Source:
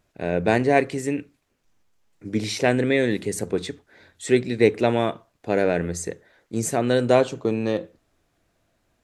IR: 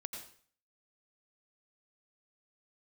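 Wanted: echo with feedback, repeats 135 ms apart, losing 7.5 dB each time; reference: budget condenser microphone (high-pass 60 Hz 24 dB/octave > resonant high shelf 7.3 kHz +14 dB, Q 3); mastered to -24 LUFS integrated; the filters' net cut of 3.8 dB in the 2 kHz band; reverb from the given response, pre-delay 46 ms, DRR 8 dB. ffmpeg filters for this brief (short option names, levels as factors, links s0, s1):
-filter_complex "[0:a]equalizer=f=2000:t=o:g=-3.5,aecho=1:1:135|270|405|540|675:0.422|0.177|0.0744|0.0312|0.0131,asplit=2[s0][s1];[1:a]atrim=start_sample=2205,adelay=46[s2];[s1][s2]afir=irnorm=-1:irlink=0,volume=0.501[s3];[s0][s3]amix=inputs=2:normalize=0,highpass=f=60:w=0.5412,highpass=f=60:w=1.3066,highshelf=f=7300:t=q:w=3:g=14,volume=0.668"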